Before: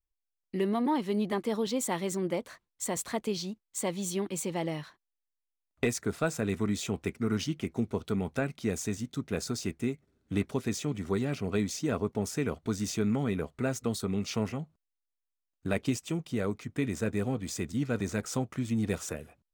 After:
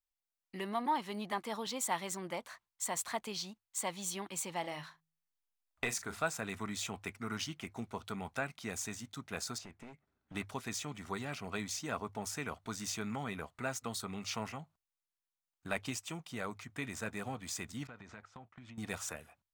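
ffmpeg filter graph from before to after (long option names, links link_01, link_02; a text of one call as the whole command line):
ffmpeg -i in.wav -filter_complex "[0:a]asettb=1/sr,asplit=3[link_01][link_02][link_03];[link_01]atrim=end=4.604[link_04];[link_02]atrim=start=4.6:end=6.22,asetpts=PTS-STARTPTS,afade=type=in:duration=0.004:curve=qsin,afade=type=out:start_time=1.616:duration=0.004:curve=qsin,bandreject=frequency=53.64:width_type=h:width=4,bandreject=frequency=107.28:width_type=h:width=4,bandreject=frequency=160.92:width_type=h:width=4,bandreject=frequency=214.56:width_type=h:width=4,asubboost=boost=5:cutoff=77,asplit=2[link_05][link_06];[link_06]adelay=39,volume=-12dB[link_07];[link_05][link_07]amix=inputs=2:normalize=0,atrim=end_sample=71442[link_08];[link_03]atrim=start=6.216[link_09];[link_04][link_08]acrossfade=duration=0.004:curve1=hsin:curve2=qsin[link_10];[link_10][link_09]acrossfade=duration=0.004:curve1=qsin:curve2=hsin,asettb=1/sr,asplit=3[link_11][link_12][link_13];[link_11]atrim=end=9.584[link_14];[link_12]atrim=start=9.58:end=10.35,asetpts=PTS-STARTPTS,afade=type=in:duration=0.004:curve=qsin,afade=type=out:start_time=0.766:duration=0.004:curve=qsin,aemphasis=mode=reproduction:type=75kf,acompressor=threshold=-32dB:ratio=6:attack=3.2:release=140:knee=1:detection=peak,aeval=exprs='clip(val(0),-1,0.0112)':channel_layout=same[link_15];[link_13]atrim=start=10.346[link_16];[link_14][link_15]acrossfade=duration=0.004:curve1=hsin:curve2=qsin[link_17];[link_17][link_16]acrossfade=duration=0.004:curve1=qsin:curve2=hsin,asettb=1/sr,asplit=3[link_18][link_19][link_20];[link_18]atrim=end=17.874[link_21];[link_19]atrim=start=17.87:end=18.78,asetpts=PTS-STARTPTS,afade=type=in:duration=0.004:curve=qsin,afade=type=out:start_time=0.906:duration=0.004:curve=qsin,lowpass=3100,agate=range=-16dB:threshold=-44dB:ratio=16:release=100:detection=peak,acompressor=threshold=-37dB:ratio=12:attack=3.2:release=140:knee=1:detection=peak[link_22];[link_20]atrim=start=18.776[link_23];[link_21][link_22]acrossfade=duration=0.004:curve1=hsin:curve2=qsin[link_24];[link_24][link_23]acrossfade=duration=0.004:curve1=qsin:curve2=hsin,lowshelf=frequency=600:width_type=q:width=1.5:gain=-9,bandreject=frequency=50:width_type=h:width=6,bandreject=frequency=100:width_type=h:width=6,volume=-2dB" out.wav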